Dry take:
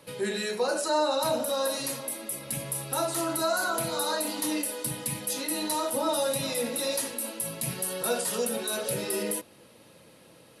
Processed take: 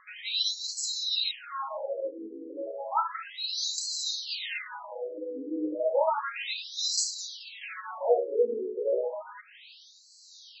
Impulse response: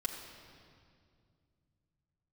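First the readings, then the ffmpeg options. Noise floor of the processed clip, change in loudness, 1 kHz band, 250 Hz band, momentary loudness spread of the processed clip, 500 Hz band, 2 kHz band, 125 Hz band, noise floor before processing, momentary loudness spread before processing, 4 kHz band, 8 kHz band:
-54 dBFS, -1.5 dB, -2.0 dB, -6.5 dB, 13 LU, -1.0 dB, -4.5 dB, under -30 dB, -55 dBFS, 6 LU, +3.5 dB, -5.5 dB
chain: -filter_complex "[0:a]highpass=f=210:p=1,tiltshelf=f=1400:g=3,bandreject=f=60:t=h:w=6,bandreject=f=120:t=h:w=6,bandreject=f=180:t=h:w=6,bandreject=f=240:t=h:w=6,bandreject=f=300:t=h:w=6,asplit=2[s0][s1];[s1]acompressor=threshold=0.0112:ratio=20,volume=1.26[s2];[s0][s2]amix=inputs=2:normalize=0,acrossover=split=490[s3][s4];[s3]aeval=exprs='val(0)*(1-0.5/2+0.5/2*cos(2*PI*1.2*n/s))':c=same[s5];[s4]aeval=exprs='val(0)*(1-0.5/2-0.5/2*cos(2*PI*1.2*n/s))':c=same[s6];[s5][s6]amix=inputs=2:normalize=0,crystalizer=i=2:c=0,asplit=2[s7][s8];[1:a]atrim=start_sample=2205,afade=t=out:st=0.22:d=0.01,atrim=end_sample=10143[s9];[s8][s9]afir=irnorm=-1:irlink=0,volume=0.2[s10];[s7][s10]amix=inputs=2:normalize=0,afftfilt=real='re*between(b*sr/1024,340*pow(5700/340,0.5+0.5*sin(2*PI*0.32*pts/sr))/1.41,340*pow(5700/340,0.5+0.5*sin(2*PI*0.32*pts/sr))*1.41)':imag='im*between(b*sr/1024,340*pow(5700/340,0.5+0.5*sin(2*PI*0.32*pts/sr))/1.41,340*pow(5700/340,0.5+0.5*sin(2*PI*0.32*pts/sr))*1.41)':win_size=1024:overlap=0.75,volume=1.58"

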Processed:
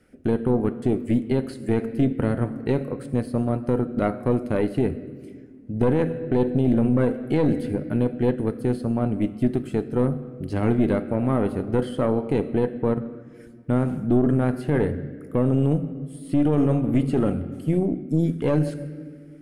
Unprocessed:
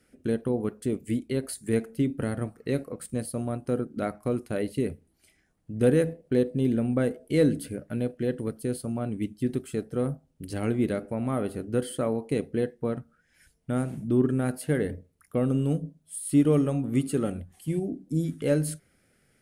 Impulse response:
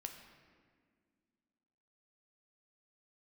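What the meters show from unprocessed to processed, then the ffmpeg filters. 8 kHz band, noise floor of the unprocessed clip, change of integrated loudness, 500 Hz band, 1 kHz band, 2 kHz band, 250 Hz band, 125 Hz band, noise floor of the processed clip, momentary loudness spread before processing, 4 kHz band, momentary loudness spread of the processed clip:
under -10 dB, -68 dBFS, +5.0 dB, +4.0 dB, +7.5 dB, +2.5 dB, +5.0 dB, +5.5 dB, -44 dBFS, 9 LU, no reading, 8 LU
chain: -filter_complex "[0:a]highshelf=f=2900:g=-10.5,asplit=2[s0][s1];[1:a]atrim=start_sample=2205[s2];[s1][s2]afir=irnorm=-1:irlink=0,volume=1.41[s3];[s0][s3]amix=inputs=2:normalize=0,aeval=exprs='(tanh(2.82*val(0)+0.75)-tanh(0.75))/2.82':c=same,acrossover=split=5900[s4][s5];[s5]acompressor=threshold=0.00112:ratio=4:attack=1:release=60[s6];[s4][s6]amix=inputs=2:normalize=0,alimiter=limit=0.141:level=0:latency=1:release=15,volume=2"

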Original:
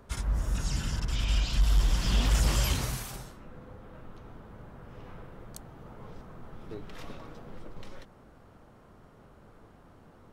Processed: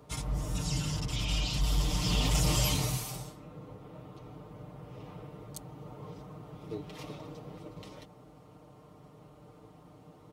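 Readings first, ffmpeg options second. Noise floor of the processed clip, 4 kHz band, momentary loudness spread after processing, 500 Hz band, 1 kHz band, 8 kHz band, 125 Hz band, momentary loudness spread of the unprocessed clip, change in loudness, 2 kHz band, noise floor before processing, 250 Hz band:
-56 dBFS, +1.5 dB, 21 LU, +1.5 dB, 0.0 dB, +2.0 dB, -1.0 dB, 22 LU, -2.5 dB, -2.0 dB, -56 dBFS, +2.0 dB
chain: -af "highpass=f=54:w=0.5412,highpass=f=54:w=1.3066,equalizer=f=1600:t=o:w=0.47:g=-12.5,aecho=1:1:6.6:0.81"

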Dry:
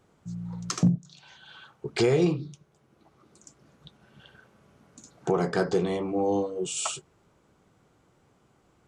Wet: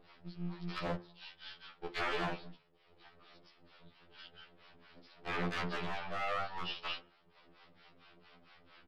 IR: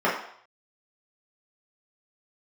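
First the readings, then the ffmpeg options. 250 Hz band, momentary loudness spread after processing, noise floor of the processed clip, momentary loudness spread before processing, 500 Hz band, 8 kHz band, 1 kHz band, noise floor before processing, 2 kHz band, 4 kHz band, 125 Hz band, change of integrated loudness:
-16.5 dB, 18 LU, -68 dBFS, 14 LU, -16.0 dB, -27.0 dB, -4.0 dB, -65 dBFS, -1.0 dB, -4.5 dB, -15.5 dB, -12.0 dB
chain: -filter_complex "[0:a]acrossover=split=560[s0][s1];[s0]aeval=exprs='val(0)*(1-1/2+1/2*cos(2*PI*4.4*n/s))':c=same[s2];[s1]aeval=exprs='val(0)*(1-1/2-1/2*cos(2*PI*4.4*n/s))':c=same[s3];[s2][s3]amix=inputs=2:normalize=0,acompressor=mode=upward:threshold=0.00282:ratio=2.5,aresample=11025,aeval=exprs='max(val(0),0)':c=same,aresample=44100,lowshelf=f=250:g=-5.5,aeval=exprs='0.0266*(abs(mod(val(0)/0.0266+3,4)-2)-1)':c=same,acrossover=split=2500[s4][s5];[s5]acompressor=threshold=0.00158:ratio=4:attack=1:release=60[s6];[s4][s6]amix=inputs=2:normalize=0,equalizer=f=3300:w=0.59:g=10,bandreject=f=50:t=h:w=6,bandreject=f=100:t=h:w=6,bandreject=f=150:t=h:w=6,bandreject=f=200:t=h:w=6,bandreject=f=250:t=h:w=6,bandreject=f=300:t=h:w=6,bandreject=f=350:t=h:w=6,asplit=2[s7][s8];[1:a]atrim=start_sample=2205[s9];[s8][s9]afir=irnorm=-1:irlink=0,volume=0.0299[s10];[s7][s10]amix=inputs=2:normalize=0,afftfilt=real='re*2*eq(mod(b,4),0)':imag='im*2*eq(mod(b,4),0)':win_size=2048:overlap=0.75,volume=1.5"

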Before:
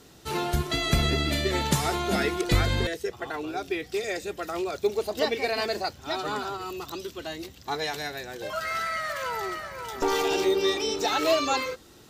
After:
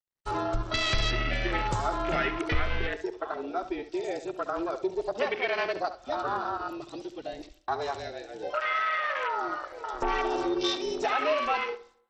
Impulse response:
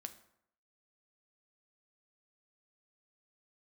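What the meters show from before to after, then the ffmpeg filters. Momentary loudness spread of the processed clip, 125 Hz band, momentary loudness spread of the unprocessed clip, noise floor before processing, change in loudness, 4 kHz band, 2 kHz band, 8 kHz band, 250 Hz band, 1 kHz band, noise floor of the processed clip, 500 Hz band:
10 LU, -7.0 dB, 11 LU, -52 dBFS, -2.5 dB, -4.5 dB, -0.5 dB, -11.0 dB, -3.5 dB, +0.5 dB, -58 dBFS, -3.5 dB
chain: -filter_complex "[0:a]afwtdn=0.0316,agate=range=0.0224:threshold=0.00316:ratio=3:detection=peak,equalizer=f=240:w=0.72:g=-14,acompressor=threshold=0.0178:ratio=2,afreqshift=-33,acontrast=84,asplit=2[s0][s1];[1:a]atrim=start_sample=2205,adelay=69[s2];[s1][s2]afir=irnorm=-1:irlink=0,volume=0.422[s3];[s0][s3]amix=inputs=2:normalize=0" -ar 32000 -c:a sbc -b:a 64k

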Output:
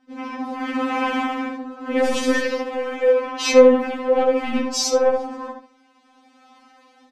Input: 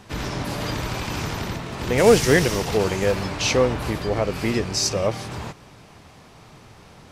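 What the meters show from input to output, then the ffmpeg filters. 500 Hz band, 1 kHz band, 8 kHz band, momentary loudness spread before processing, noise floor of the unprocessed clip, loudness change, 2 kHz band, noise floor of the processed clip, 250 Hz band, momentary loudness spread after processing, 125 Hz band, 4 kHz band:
+3.5 dB, +3.5 dB, -2.0 dB, 14 LU, -48 dBFS, +2.0 dB, -0.5 dB, -57 dBFS, +2.5 dB, 16 LU, under -25 dB, -1.5 dB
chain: -filter_complex "[0:a]highpass=130,bandreject=f=50:t=h:w=6,bandreject=f=100:t=h:w=6,bandreject=f=150:t=h:w=6,bandreject=f=200:t=h:w=6,bandreject=f=250:t=h:w=6,afwtdn=0.0224,lowshelf=f=190:g=8,dynaudnorm=f=540:g=3:m=5.62,asoftclip=type=tanh:threshold=0.376,adynamicsmooth=sensitivity=7.5:basefreq=7400,asplit=2[s0][s1];[s1]adelay=71,lowpass=f=2200:p=1,volume=0.631,asplit=2[s2][s3];[s3]adelay=71,lowpass=f=2200:p=1,volume=0.28,asplit=2[s4][s5];[s5]adelay=71,lowpass=f=2200:p=1,volume=0.28,asplit=2[s6][s7];[s7]adelay=71,lowpass=f=2200:p=1,volume=0.28[s8];[s2][s4][s6][s8]amix=inputs=4:normalize=0[s9];[s0][s9]amix=inputs=2:normalize=0,aresample=32000,aresample=44100,afftfilt=real='re*3.46*eq(mod(b,12),0)':imag='im*3.46*eq(mod(b,12),0)':win_size=2048:overlap=0.75"

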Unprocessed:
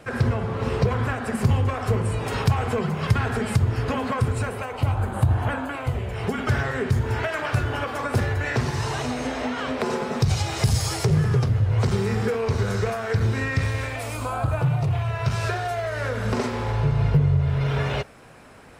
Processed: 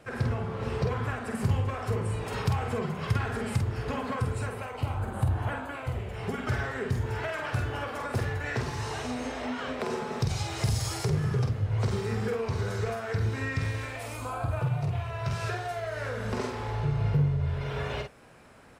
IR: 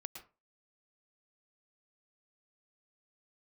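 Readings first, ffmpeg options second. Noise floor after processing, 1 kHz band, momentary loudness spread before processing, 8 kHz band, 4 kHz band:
-39 dBFS, -6.5 dB, 6 LU, -6.5 dB, -6.5 dB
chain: -filter_complex "[0:a]asplit=2[s0][s1];[s1]adelay=48,volume=0.531[s2];[s0][s2]amix=inputs=2:normalize=0,volume=0.422"

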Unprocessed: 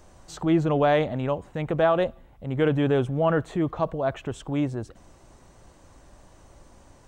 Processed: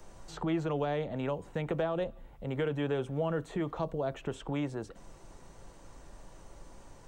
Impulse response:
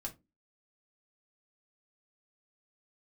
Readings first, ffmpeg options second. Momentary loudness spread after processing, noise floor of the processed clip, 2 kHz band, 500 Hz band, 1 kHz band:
8 LU, -54 dBFS, -9.5 dB, -9.0 dB, -11.0 dB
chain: -filter_complex "[0:a]acrossover=split=160|590|3700[s0][s1][s2][s3];[s0]acompressor=threshold=0.00562:ratio=4[s4];[s1]acompressor=threshold=0.0224:ratio=4[s5];[s2]acompressor=threshold=0.0126:ratio=4[s6];[s3]acompressor=threshold=0.00178:ratio=4[s7];[s4][s5][s6][s7]amix=inputs=4:normalize=0,asplit=2[s8][s9];[1:a]atrim=start_sample=2205,asetrate=74970,aresample=44100[s10];[s9][s10]afir=irnorm=-1:irlink=0,volume=0.596[s11];[s8][s11]amix=inputs=2:normalize=0,volume=0.75"

